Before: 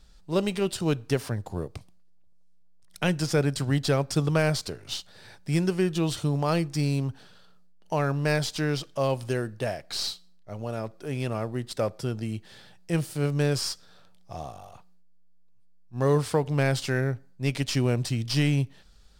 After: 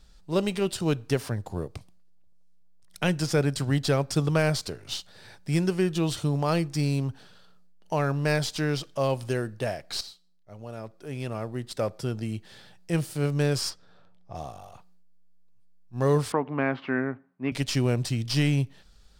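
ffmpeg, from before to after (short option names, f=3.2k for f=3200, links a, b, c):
-filter_complex "[0:a]asplit=3[a][b][c];[a]afade=t=out:st=13.69:d=0.02[d];[b]lowpass=f=1.5k:p=1,afade=t=in:st=13.69:d=0.02,afade=t=out:st=14.34:d=0.02[e];[c]afade=t=in:st=14.34:d=0.02[f];[d][e][f]amix=inputs=3:normalize=0,asettb=1/sr,asplit=3[g][h][i];[g]atrim=end=16.324[j];[h]atrim=start=16.32:end=17.52,asetpts=PTS-STARTPTS,afade=t=in:d=0.004:c=qsin,afade=t=out:st=1.196:d=0.004:c=qsin,highpass=250,equalizer=f=250:t=q:w=4:g=9,equalizer=f=500:t=q:w=4:g=-5,equalizer=f=1.1k:t=q:w=4:g=7,lowpass=f=2.4k:w=0.5412,lowpass=f=2.4k:w=1.3066[k];[i]atrim=start=17.516[l];[j][k]acrossfade=d=0.004:c1=hsin:c2=qsin[m];[m][l]acrossfade=d=0.004:c1=qsin:c2=hsin,asplit=2[n][o];[n]atrim=end=10.01,asetpts=PTS-STARTPTS,afade=t=out:st=10.006:d=0.004:c=hsin:silence=0.211349[p];[o]atrim=start=10.01,asetpts=PTS-STARTPTS,afade=t=in:d=2.1:silence=0.211349[q];[p][q]concat=n=2:v=0:a=1"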